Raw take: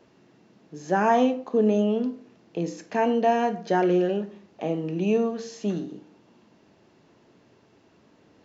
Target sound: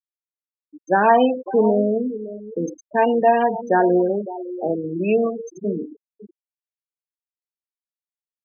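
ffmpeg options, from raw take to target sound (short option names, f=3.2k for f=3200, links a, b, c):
-af "aemphasis=mode=production:type=bsi,aecho=1:1:558|1116:0.224|0.047,afftfilt=real='re*gte(hypot(re,im),0.0708)':imag='im*gte(hypot(re,im),0.0708)':win_size=1024:overlap=0.75,volume=7dB"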